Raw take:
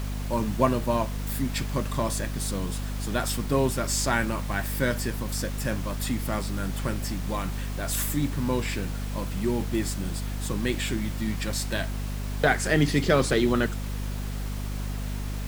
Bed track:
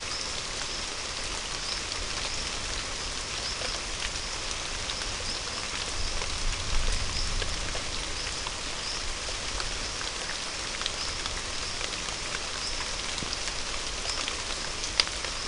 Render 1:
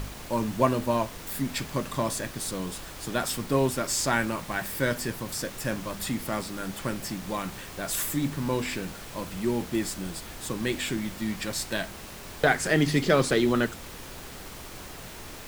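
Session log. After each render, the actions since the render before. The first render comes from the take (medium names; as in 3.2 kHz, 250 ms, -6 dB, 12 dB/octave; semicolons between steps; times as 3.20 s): de-hum 50 Hz, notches 5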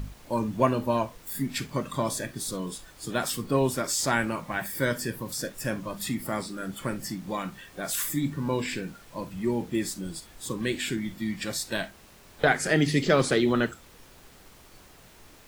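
noise print and reduce 11 dB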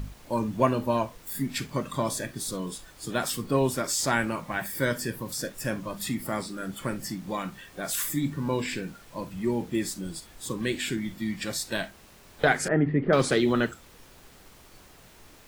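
12.68–13.13 s: low-pass 1.6 kHz 24 dB/octave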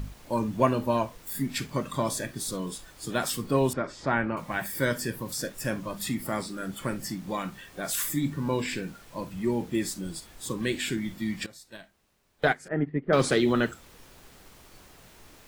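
3.73–4.37 s: low-pass 2 kHz; 11.46–13.14 s: upward expansion 2.5:1, over -30 dBFS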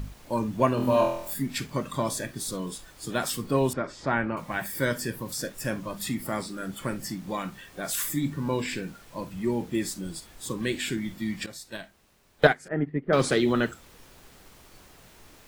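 0.75–1.34 s: flutter echo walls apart 4.1 m, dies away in 0.65 s; 11.47–12.47 s: gain +7 dB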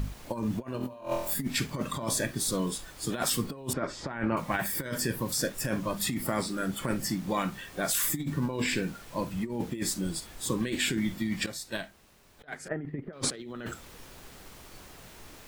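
compressor with a negative ratio -30 dBFS, ratio -0.5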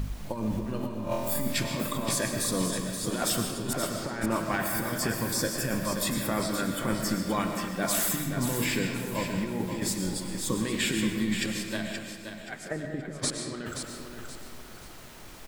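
on a send: feedback delay 526 ms, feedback 33%, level -7.5 dB; on the sum: algorithmic reverb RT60 1.3 s, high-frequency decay 0.7×, pre-delay 75 ms, DRR 4.5 dB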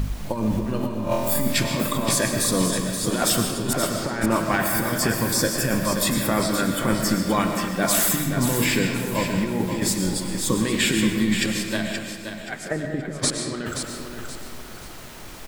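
trim +7 dB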